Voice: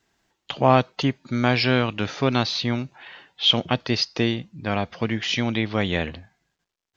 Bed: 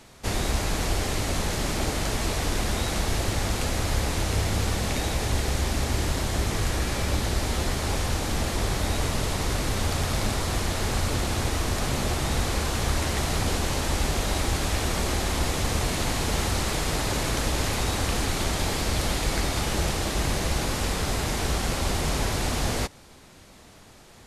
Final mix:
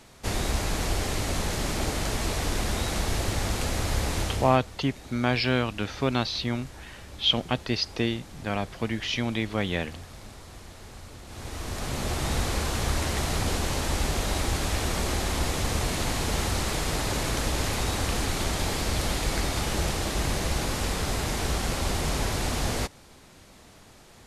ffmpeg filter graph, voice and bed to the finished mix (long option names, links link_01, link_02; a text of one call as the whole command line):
ffmpeg -i stem1.wav -i stem2.wav -filter_complex "[0:a]adelay=3800,volume=-4.5dB[link_01];[1:a]volume=15.5dB,afade=type=out:start_time=4.21:duration=0.38:silence=0.141254,afade=type=in:start_time=11.25:duration=1.03:silence=0.141254[link_02];[link_01][link_02]amix=inputs=2:normalize=0" out.wav